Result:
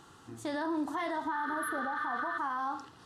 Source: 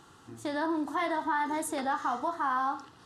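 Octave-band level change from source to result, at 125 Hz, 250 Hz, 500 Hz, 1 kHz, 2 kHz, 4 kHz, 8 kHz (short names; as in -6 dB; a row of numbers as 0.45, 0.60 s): n/a, -2.5 dB, -4.0 dB, -4.0 dB, 0.0 dB, -4.0 dB, -7.0 dB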